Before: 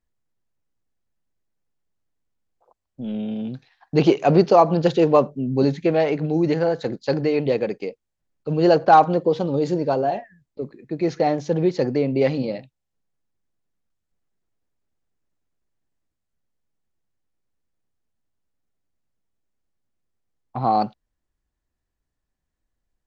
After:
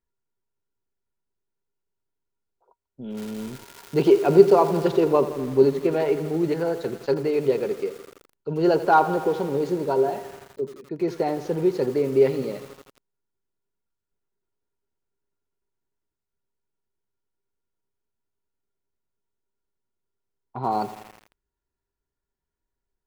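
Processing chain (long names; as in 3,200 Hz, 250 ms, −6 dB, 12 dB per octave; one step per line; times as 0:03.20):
0:03.15–0:04.83: surface crackle 500 per second −25 dBFS
hollow resonant body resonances 400/950/1,400 Hz, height 14 dB, ringing for 80 ms
feedback echo at a low word length 83 ms, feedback 80%, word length 5 bits, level −14 dB
level −6.5 dB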